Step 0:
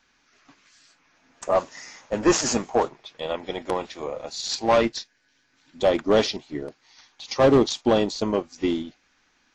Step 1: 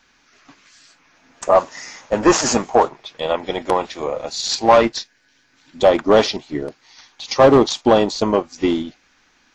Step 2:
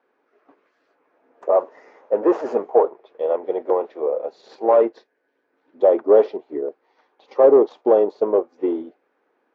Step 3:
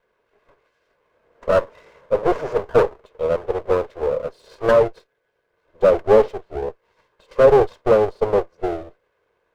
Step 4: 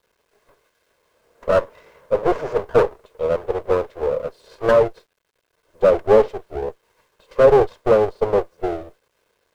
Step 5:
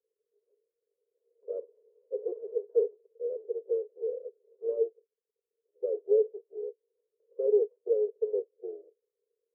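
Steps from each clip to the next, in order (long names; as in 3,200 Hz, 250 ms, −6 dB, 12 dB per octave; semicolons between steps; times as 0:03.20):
dynamic equaliser 930 Hz, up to +6 dB, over −32 dBFS, Q 0.81; in parallel at −1 dB: downward compressor, threshold −24 dBFS, peak gain reduction 13.5 dB; on the sum: level +1.5 dB
in parallel at −6 dB: soft clipping −18 dBFS, distortion −6 dB; on the sum: four-pole ladder band-pass 500 Hz, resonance 55%; level +5 dB
lower of the sound and its delayed copy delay 1.9 ms; level +1 dB
bit reduction 11 bits
flat-topped band-pass 440 Hz, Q 4.9; level −8.5 dB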